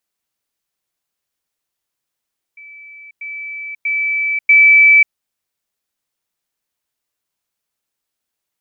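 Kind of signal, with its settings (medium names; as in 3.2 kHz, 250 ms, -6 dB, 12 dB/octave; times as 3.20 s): level ladder 2.31 kHz -35 dBFS, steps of 10 dB, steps 4, 0.54 s 0.10 s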